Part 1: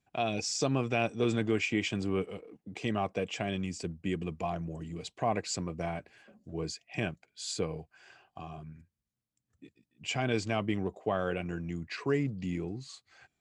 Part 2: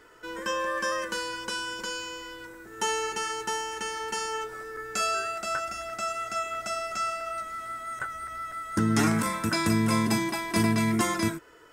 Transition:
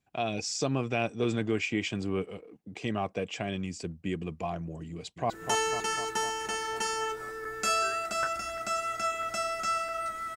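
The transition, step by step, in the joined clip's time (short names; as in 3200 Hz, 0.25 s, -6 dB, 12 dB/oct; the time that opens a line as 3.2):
part 1
4.91–5.3 echo throw 0.25 s, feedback 70%, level -8 dB
5.3 switch to part 2 from 2.62 s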